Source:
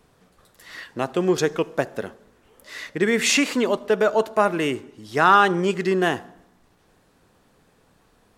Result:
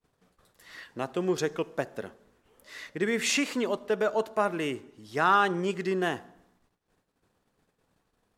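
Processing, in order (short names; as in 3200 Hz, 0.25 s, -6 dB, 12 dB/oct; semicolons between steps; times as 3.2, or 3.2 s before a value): gate -58 dBFS, range -24 dB; gain -7.5 dB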